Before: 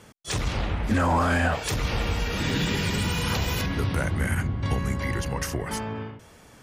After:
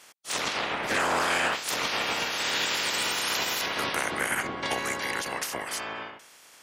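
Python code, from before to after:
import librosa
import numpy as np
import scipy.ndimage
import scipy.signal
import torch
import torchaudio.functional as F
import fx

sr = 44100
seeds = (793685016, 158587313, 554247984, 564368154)

y = fx.spec_clip(x, sr, under_db=21)
y = fx.highpass(y, sr, hz=510.0, slope=6)
y = fx.doppler_dist(y, sr, depth_ms=0.11)
y = y * 10.0 ** (-1.5 / 20.0)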